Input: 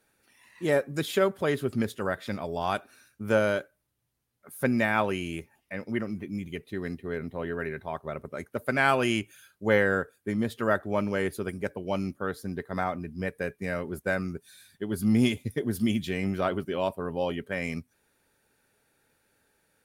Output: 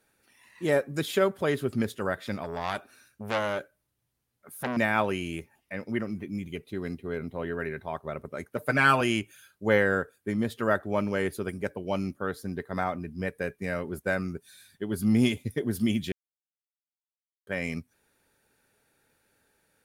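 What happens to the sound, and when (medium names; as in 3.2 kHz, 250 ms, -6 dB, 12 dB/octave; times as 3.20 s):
2.43–4.77 s: transformer saturation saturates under 2 kHz
6.53–7.37 s: band-stop 1.8 kHz, Q 7.3
8.57–9.01 s: comb 6.6 ms, depth 78%
16.12–17.47 s: mute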